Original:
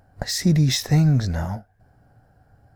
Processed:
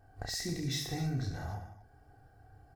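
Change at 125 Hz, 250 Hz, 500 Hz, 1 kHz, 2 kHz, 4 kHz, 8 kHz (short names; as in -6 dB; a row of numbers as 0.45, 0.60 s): -17.5, -17.0, -12.0, -10.0, -11.0, -11.5, -12.0 dB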